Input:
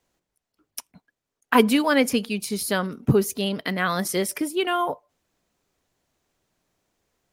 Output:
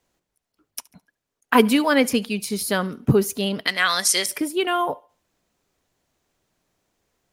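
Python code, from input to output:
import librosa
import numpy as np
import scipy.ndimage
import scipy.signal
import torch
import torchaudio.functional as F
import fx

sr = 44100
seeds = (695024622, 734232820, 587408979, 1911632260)

y = fx.weighting(x, sr, curve='ITU-R 468', at=(3.67, 4.26))
y = fx.echo_thinned(y, sr, ms=71, feedback_pct=36, hz=420.0, wet_db=-23.5)
y = y * 10.0 ** (1.5 / 20.0)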